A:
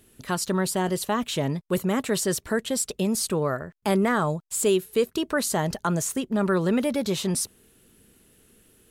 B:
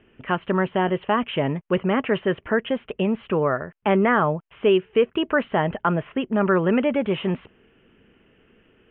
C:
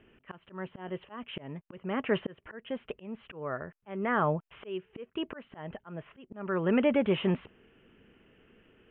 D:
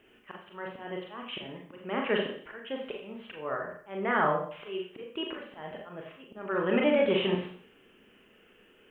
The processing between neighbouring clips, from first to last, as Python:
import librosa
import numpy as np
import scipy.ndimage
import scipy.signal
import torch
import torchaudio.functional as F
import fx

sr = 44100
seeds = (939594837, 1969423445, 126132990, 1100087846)

y1 = scipy.signal.sosfilt(scipy.signal.butter(16, 3100.0, 'lowpass', fs=sr, output='sos'), x)
y1 = fx.low_shelf(y1, sr, hz=230.0, db=-6.5)
y1 = y1 * librosa.db_to_amplitude(5.5)
y2 = fx.auto_swell(y1, sr, attack_ms=534.0)
y2 = y2 * librosa.db_to_amplitude(-3.5)
y3 = fx.bass_treble(y2, sr, bass_db=-9, treble_db=11)
y3 = fx.rev_schroeder(y3, sr, rt60_s=0.5, comb_ms=30, drr_db=0.0)